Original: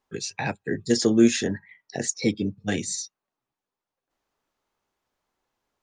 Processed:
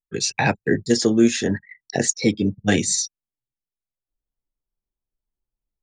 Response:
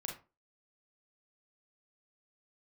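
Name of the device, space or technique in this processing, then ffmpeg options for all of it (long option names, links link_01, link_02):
voice memo with heavy noise removal: -af "anlmdn=0.0158,dynaudnorm=framelen=110:gausssize=3:maxgain=14.5dB,volume=-4dB"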